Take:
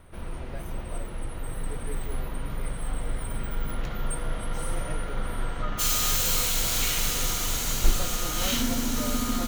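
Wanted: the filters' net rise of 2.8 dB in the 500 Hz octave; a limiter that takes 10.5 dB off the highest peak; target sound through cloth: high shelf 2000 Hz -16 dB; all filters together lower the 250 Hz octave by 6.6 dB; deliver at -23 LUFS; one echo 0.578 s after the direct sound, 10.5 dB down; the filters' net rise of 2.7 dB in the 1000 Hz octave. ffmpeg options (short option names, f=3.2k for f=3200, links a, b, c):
-af "equalizer=f=250:t=o:g=-9,equalizer=f=500:t=o:g=4.5,equalizer=f=1k:t=o:g=8,alimiter=limit=-18dB:level=0:latency=1,highshelf=f=2k:g=-16,aecho=1:1:578:0.299,volume=12dB"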